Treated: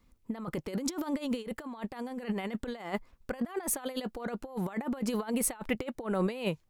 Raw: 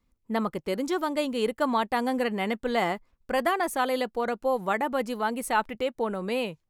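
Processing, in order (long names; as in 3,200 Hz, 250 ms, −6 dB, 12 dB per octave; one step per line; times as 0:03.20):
compressor whose output falls as the input rises −33 dBFS, ratio −0.5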